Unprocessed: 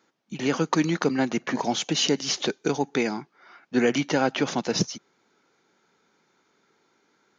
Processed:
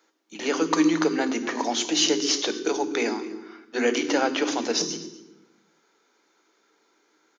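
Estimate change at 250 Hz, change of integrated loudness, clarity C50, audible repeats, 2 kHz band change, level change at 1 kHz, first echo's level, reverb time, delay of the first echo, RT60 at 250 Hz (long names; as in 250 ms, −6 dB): +0.5 dB, +1.0 dB, 11.5 dB, 1, +1.0 dB, +0.5 dB, −20.0 dB, 1.0 s, 245 ms, 1.4 s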